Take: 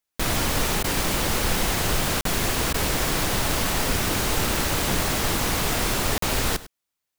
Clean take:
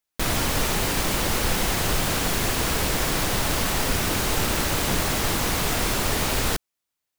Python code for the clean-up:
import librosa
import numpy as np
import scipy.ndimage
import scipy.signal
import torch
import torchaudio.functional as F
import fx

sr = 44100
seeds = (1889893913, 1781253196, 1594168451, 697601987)

y = fx.fix_interpolate(x, sr, at_s=(2.21, 6.18), length_ms=43.0)
y = fx.fix_interpolate(y, sr, at_s=(0.83, 2.73), length_ms=10.0)
y = fx.fix_echo_inverse(y, sr, delay_ms=101, level_db=-17.5)